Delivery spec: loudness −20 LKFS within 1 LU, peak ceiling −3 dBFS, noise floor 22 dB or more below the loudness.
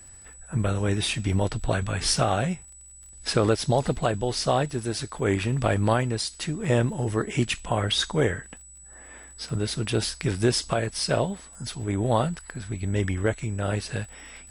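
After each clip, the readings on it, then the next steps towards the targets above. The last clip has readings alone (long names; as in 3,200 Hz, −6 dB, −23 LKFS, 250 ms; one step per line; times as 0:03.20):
crackle rate 25 per second; interfering tone 7,900 Hz; level of the tone −46 dBFS; integrated loudness −26.5 LKFS; sample peak −10.0 dBFS; target loudness −20.0 LKFS
→ click removal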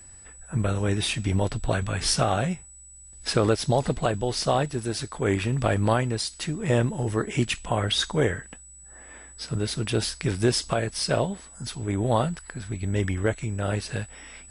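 crackle rate 0.069 per second; interfering tone 7,900 Hz; level of the tone −46 dBFS
→ notch filter 7,900 Hz, Q 30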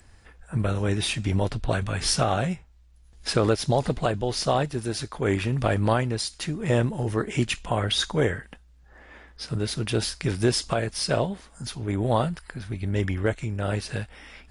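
interfering tone none found; integrated loudness −26.5 LKFS; sample peak −10.0 dBFS; target loudness −20.0 LKFS
→ level +6.5 dB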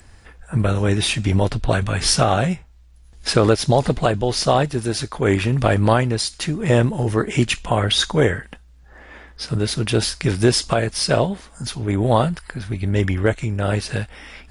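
integrated loudness −20.0 LKFS; sample peak −3.5 dBFS; background noise floor −48 dBFS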